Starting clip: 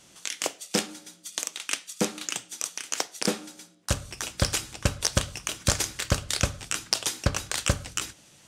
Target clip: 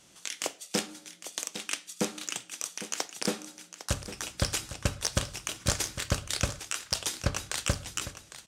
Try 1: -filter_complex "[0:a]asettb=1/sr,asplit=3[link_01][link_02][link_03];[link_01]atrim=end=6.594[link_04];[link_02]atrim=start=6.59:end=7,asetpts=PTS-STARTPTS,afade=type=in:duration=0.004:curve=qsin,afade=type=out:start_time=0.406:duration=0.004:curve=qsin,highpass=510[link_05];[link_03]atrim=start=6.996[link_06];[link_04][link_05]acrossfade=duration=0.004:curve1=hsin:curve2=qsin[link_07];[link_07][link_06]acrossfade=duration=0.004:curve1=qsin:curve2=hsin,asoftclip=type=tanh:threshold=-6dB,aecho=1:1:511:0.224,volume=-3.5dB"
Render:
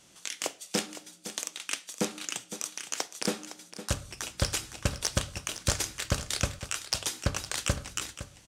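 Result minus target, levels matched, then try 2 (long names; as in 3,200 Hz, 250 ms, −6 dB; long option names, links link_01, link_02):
echo 294 ms early
-filter_complex "[0:a]asettb=1/sr,asplit=3[link_01][link_02][link_03];[link_01]atrim=end=6.594[link_04];[link_02]atrim=start=6.59:end=7,asetpts=PTS-STARTPTS,afade=type=in:duration=0.004:curve=qsin,afade=type=out:start_time=0.406:duration=0.004:curve=qsin,highpass=510[link_05];[link_03]atrim=start=6.996[link_06];[link_04][link_05]acrossfade=duration=0.004:curve1=hsin:curve2=qsin[link_07];[link_07][link_06]acrossfade=duration=0.004:curve1=qsin:curve2=hsin,asoftclip=type=tanh:threshold=-6dB,aecho=1:1:805:0.224,volume=-3.5dB"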